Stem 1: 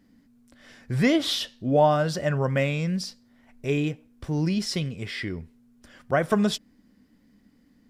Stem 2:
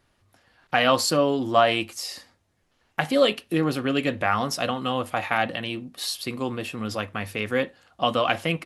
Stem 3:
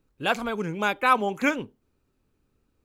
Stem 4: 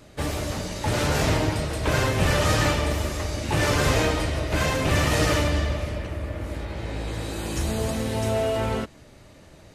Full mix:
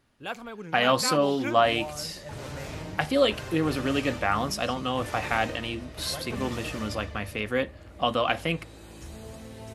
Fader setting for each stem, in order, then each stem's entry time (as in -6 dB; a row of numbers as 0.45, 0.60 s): -18.0, -2.5, -10.5, -16.0 dB; 0.00, 0.00, 0.00, 1.45 s